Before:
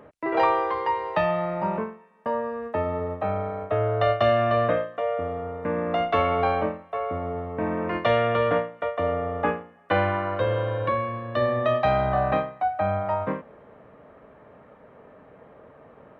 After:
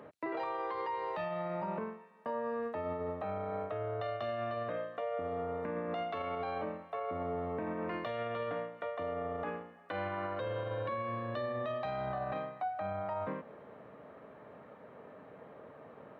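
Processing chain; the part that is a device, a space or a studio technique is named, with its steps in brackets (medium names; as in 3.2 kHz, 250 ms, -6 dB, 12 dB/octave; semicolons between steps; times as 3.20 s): broadcast voice chain (high-pass 110 Hz 12 dB/octave; de-esser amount 95%; compression 4:1, threshold -29 dBFS, peak gain reduction 10.5 dB; peaking EQ 4.1 kHz +5 dB 0.31 oct; peak limiter -26.5 dBFS, peak gain reduction 9.5 dB); trim -2.5 dB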